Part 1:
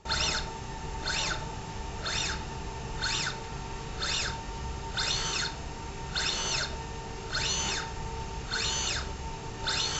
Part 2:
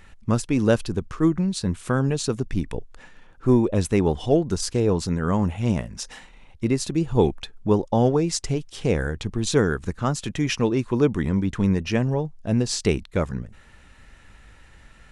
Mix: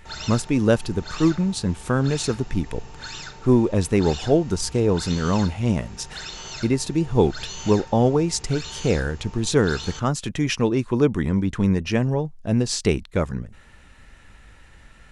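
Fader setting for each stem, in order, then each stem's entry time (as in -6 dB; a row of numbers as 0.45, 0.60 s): -5.5, +1.0 dB; 0.00, 0.00 s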